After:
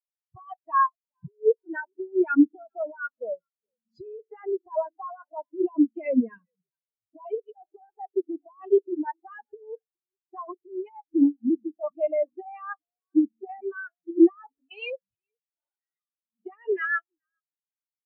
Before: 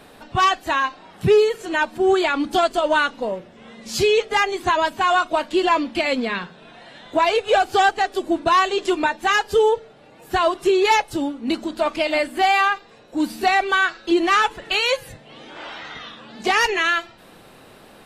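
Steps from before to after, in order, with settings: negative-ratio compressor -20 dBFS, ratio -0.5; frequency-shifting echo 0.415 s, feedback 42%, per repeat -69 Hz, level -15 dB; spectral expander 4:1

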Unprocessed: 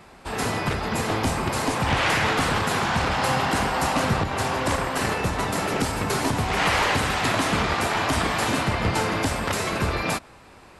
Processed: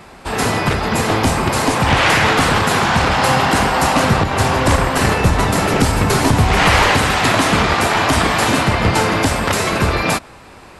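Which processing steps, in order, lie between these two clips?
4.36–6.92 low shelf 120 Hz +8.5 dB; gain +8.5 dB

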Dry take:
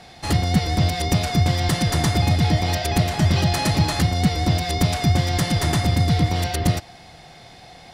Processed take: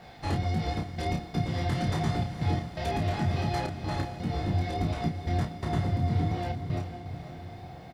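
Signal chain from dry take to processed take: LPF 1800 Hz 6 dB/oct, from 3.59 s 1000 Hz; limiter -14.5 dBFS, peak gain reduction 7 dB; compressor 2:1, threshold -26 dBFS, peak gain reduction 5 dB; chorus 1.4 Hz, delay 17 ms, depth 5.4 ms; step gate "xxxxxxxxx..xx..x" 168 bpm -24 dB; requantised 12-bit, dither none; doubler 31 ms -5 dB; diffused feedback echo 0.477 s, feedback 54%, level -10 dB

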